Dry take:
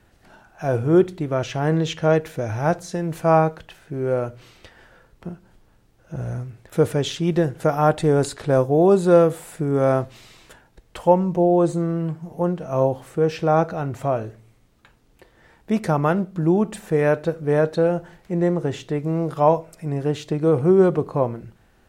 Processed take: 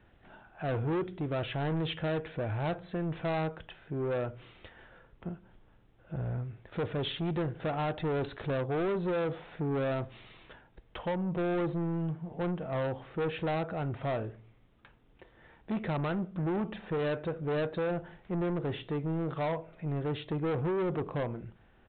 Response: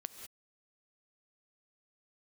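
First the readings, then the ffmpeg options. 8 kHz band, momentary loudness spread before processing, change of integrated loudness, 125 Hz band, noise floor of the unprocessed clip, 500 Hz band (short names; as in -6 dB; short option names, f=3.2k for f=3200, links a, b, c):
under -40 dB, 12 LU, -13.0 dB, -10.5 dB, -58 dBFS, -14.0 dB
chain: -af "alimiter=limit=-10.5dB:level=0:latency=1:release=240,aresample=8000,asoftclip=type=tanh:threshold=-23.5dB,aresample=44100,volume=-4.5dB"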